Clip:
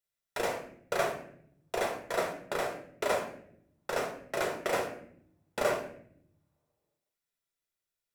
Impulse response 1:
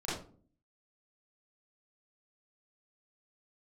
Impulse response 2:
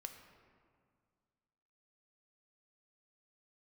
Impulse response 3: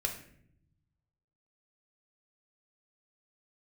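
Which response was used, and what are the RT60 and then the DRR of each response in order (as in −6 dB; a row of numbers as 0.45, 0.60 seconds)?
3; 0.45, 2.0, 0.65 seconds; −10.0, 5.0, 2.0 decibels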